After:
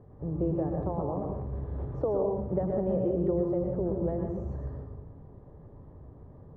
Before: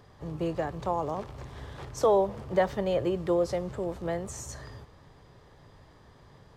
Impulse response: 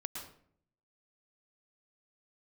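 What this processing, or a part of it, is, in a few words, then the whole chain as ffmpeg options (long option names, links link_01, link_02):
television next door: -filter_complex "[0:a]acompressor=threshold=-28dB:ratio=5,lowpass=520[link_01];[1:a]atrim=start_sample=2205[link_02];[link_01][link_02]afir=irnorm=-1:irlink=0,volume=7dB"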